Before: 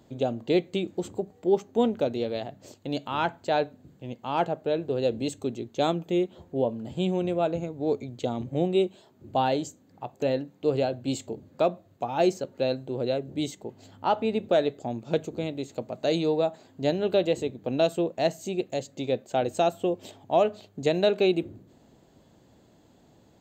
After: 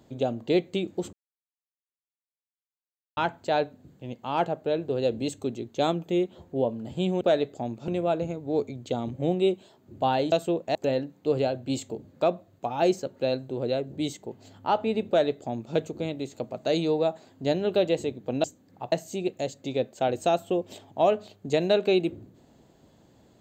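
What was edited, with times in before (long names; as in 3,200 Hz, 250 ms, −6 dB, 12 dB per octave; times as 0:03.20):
0:01.13–0:03.17: silence
0:09.65–0:10.13: swap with 0:17.82–0:18.25
0:14.46–0:15.13: duplicate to 0:07.21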